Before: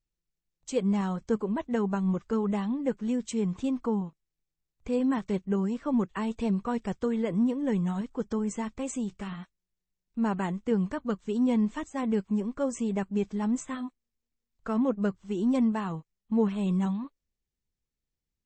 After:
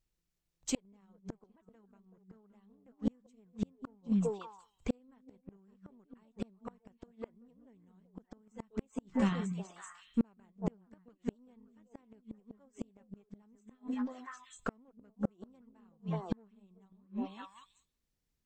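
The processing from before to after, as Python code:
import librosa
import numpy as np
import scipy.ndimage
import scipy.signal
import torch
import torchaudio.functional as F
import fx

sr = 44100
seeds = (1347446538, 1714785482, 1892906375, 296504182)

y = fx.echo_stepped(x, sr, ms=189, hz=200.0, octaves=1.4, feedback_pct=70, wet_db=-2.0)
y = fx.cheby_harmonics(y, sr, harmonics=(4,), levels_db=(-19,), full_scale_db=-13.5)
y = fx.gate_flip(y, sr, shuts_db=-21.0, range_db=-40)
y = F.gain(torch.from_numpy(y), 3.0).numpy()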